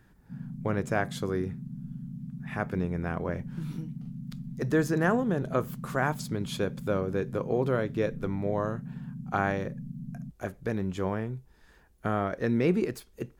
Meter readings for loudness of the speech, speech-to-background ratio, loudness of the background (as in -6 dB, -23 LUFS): -31.0 LUFS, 9.5 dB, -40.5 LUFS